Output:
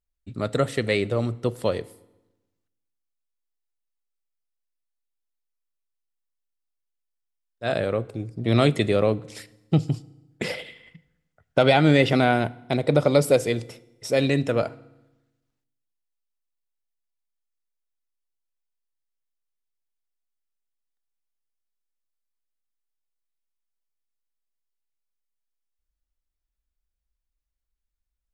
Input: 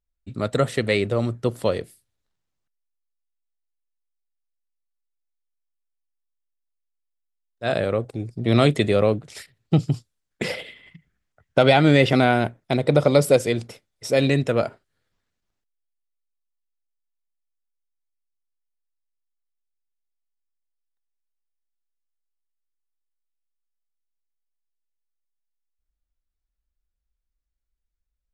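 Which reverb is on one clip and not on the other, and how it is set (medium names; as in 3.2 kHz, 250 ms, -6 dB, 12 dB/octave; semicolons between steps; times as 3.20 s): FDN reverb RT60 1 s, low-frequency decay 1.25×, high-frequency decay 0.85×, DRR 18.5 dB; trim -2 dB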